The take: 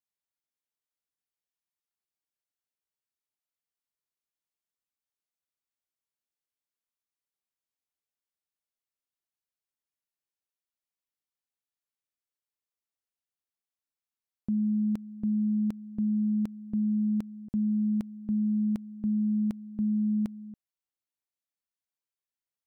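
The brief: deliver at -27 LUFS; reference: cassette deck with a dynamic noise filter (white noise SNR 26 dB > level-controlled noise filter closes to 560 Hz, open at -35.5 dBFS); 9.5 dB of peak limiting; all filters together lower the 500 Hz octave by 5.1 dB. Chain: peaking EQ 500 Hz -7.5 dB; peak limiter -34 dBFS; white noise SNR 26 dB; level-controlled noise filter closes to 560 Hz, open at -35.5 dBFS; trim +12.5 dB

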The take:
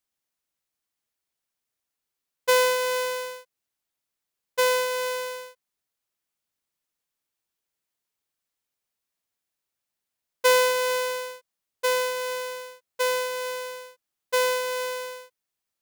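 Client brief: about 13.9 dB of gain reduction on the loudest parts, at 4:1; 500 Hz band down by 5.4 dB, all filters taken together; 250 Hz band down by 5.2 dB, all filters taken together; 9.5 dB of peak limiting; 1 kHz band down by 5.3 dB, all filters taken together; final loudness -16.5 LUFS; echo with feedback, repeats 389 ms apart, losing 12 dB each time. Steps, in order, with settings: peaking EQ 250 Hz -8 dB; peaking EQ 500 Hz -3 dB; peaking EQ 1 kHz -4.5 dB; compression 4:1, threshold -35 dBFS; peak limiter -28.5 dBFS; feedback delay 389 ms, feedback 25%, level -12 dB; trim +24 dB

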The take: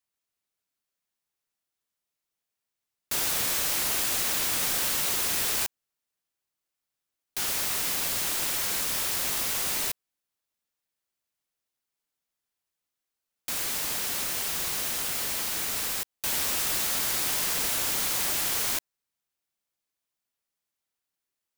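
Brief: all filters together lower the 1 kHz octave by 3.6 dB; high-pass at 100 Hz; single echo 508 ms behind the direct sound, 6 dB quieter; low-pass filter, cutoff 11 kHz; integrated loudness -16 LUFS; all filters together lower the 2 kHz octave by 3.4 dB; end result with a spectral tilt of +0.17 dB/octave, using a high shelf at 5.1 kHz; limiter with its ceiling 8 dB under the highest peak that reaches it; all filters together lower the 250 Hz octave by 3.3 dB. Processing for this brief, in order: high-pass 100 Hz; low-pass 11 kHz; peaking EQ 250 Hz -4 dB; peaking EQ 1 kHz -3.5 dB; peaking EQ 2 kHz -4 dB; treble shelf 5.1 kHz +4 dB; peak limiter -23 dBFS; delay 508 ms -6 dB; trim +14 dB

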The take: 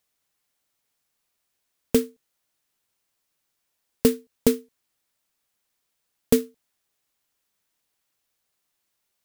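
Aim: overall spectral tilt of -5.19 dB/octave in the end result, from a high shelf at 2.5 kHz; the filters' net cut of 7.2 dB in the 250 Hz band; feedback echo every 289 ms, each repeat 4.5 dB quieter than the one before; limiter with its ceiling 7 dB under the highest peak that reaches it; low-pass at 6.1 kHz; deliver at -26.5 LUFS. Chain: low-pass 6.1 kHz; peaking EQ 250 Hz -7.5 dB; treble shelf 2.5 kHz -3.5 dB; peak limiter -14 dBFS; feedback delay 289 ms, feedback 60%, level -4.5 dB; trim +8.5 dB

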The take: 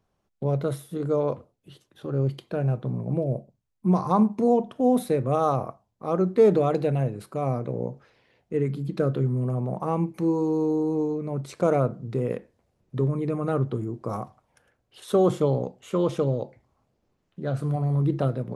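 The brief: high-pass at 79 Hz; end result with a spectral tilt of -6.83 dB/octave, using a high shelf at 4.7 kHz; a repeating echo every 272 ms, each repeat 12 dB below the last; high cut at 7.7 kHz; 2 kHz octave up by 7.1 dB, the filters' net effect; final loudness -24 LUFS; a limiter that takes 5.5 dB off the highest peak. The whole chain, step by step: high-pass 79 Hz; low-pass 7.7 kHz; peaking EQ 2 kHz +9 dB; treble shelf 4.7 kHz +4.5 dB; peak limiter -14 dBFS; feedback delay 272 ms, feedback 25%, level -12 dB; trim +2.5 dB

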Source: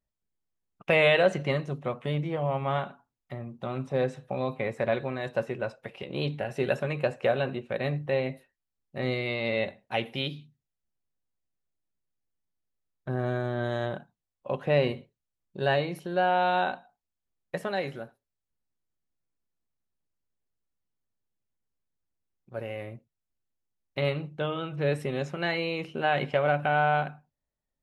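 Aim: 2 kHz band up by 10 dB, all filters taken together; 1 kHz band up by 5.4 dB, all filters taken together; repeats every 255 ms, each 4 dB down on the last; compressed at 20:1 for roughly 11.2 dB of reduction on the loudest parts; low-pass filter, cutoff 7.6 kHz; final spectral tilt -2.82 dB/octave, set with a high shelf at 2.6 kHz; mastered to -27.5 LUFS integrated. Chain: low-pass 7.6 kHz; peaking EQ 1 kHz +5.5 dB; peaking EQ 2 kHz +8 dB; treble shelf 2.6 kHz +7 dB; compression 20:1, threshold -21 dBFS; feedback delay 255 ms, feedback 63%, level -4 dB; trim -0.5 dB

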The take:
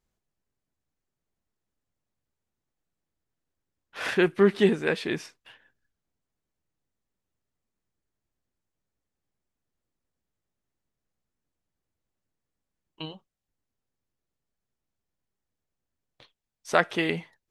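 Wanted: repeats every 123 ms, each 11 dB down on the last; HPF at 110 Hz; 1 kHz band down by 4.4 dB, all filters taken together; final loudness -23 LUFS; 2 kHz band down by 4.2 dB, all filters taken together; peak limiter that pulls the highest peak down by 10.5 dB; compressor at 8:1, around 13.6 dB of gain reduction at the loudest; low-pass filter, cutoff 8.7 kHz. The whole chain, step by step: high-pass 110 Hz; low-pass 8.7 kHz; peaking EQ 1 kHz -5.5 dB; peaking EQ 2 kHz -3.5 dB; compression 8:1, threshold -30 dBFS; peak limiter -28.5 dBFS; feedback delay 123 ms, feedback 28%, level -11 dB; trim +17.5 dB

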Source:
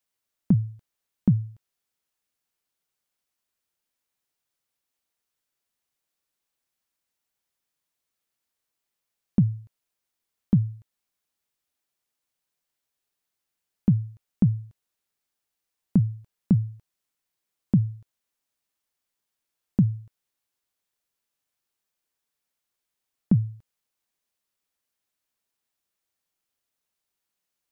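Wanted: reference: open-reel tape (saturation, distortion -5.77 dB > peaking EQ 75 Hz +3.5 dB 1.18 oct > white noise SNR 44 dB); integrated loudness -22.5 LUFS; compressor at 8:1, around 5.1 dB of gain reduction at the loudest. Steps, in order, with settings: compression 8:1, threshold -19 dBFS; saturation -28.5 dBFS; peaking EQ 75 Hz +3.5 dB 1.18 oct; white noise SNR 44 dB; trim +14 dB

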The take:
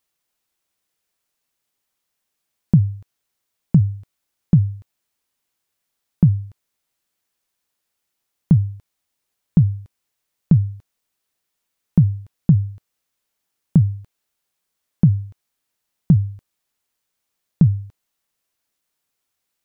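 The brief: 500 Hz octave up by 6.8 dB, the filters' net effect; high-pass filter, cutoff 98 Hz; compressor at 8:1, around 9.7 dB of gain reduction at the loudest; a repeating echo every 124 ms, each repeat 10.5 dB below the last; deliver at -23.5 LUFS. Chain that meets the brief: high-pass 98 Hz; peaking EQ 500 Hz +9 dB; compression 8:1, threshold -18 dBFS; feedback delay 124 ms, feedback 30%, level -10.5 dB; trim +4.5 dB

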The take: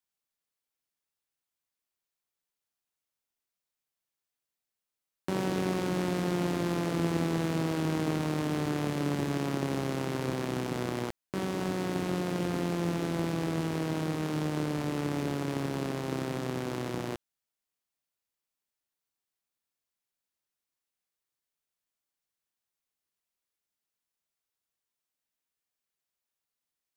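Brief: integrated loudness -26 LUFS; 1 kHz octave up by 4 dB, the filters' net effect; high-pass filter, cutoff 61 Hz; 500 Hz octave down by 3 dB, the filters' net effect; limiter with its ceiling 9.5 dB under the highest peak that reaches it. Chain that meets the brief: high-pass 61 Hz; peaking EQ 500 Hz -6 dB; peaking EQ 1 kHz +7 dB; trim +10.5 dB; peak limiter -14.5 dBFS

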